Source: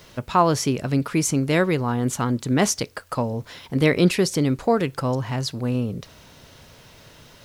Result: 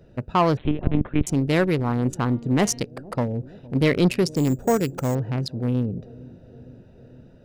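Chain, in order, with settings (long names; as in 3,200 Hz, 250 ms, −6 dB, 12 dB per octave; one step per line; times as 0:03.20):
adaptive Wiener filter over 41 samples
soft clipping −12 dBFS, distortion −17 dB
0:00.57–0:01.27: one-pitch LPC vocoder at 8 kHz 150 Hz
0:02.23–0:02.81: hum removal 234.9 Hz, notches 18
0:04.36–0:05.15: bad sample-rate conversion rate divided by 6×, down none, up hold
on a send: bucket-brigade delay 460 ms, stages 2,048, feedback 70%, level −22.5 dB
on the sum: level +1.5 dB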